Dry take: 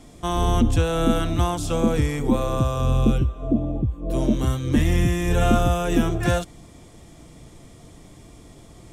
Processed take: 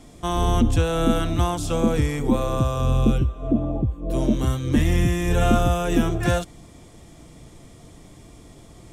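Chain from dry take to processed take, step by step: 3.44–3.92 bell 2300 Hz -> 560 Hz +7 dB 1.3 oct

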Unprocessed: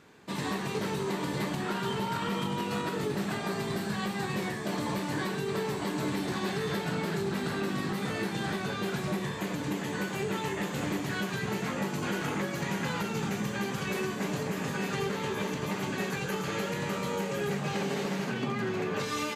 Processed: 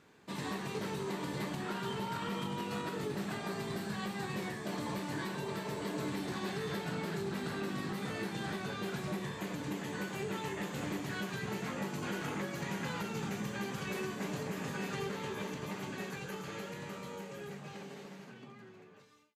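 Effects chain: ending faded out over 4.53 s; spectral repair 5.2–5.99, 400–1100 Hz both; gain -6 dB

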